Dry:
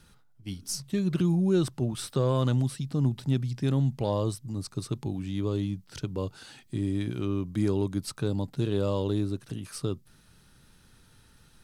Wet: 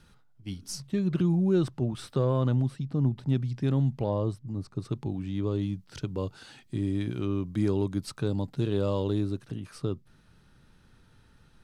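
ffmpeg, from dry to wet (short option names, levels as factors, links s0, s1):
-af "asetnsamples=n=441:p=0,asendcmd='0.87 lowpass f 2500;2.25 lowpass f 1400;3.29 lowpass f 2700;4.04 lowpass f 1100;4.85 lowpass f 2600;5.61 lowpass f 5400;9.46 lowpass f 2300',lowpass=f=4700:p=1"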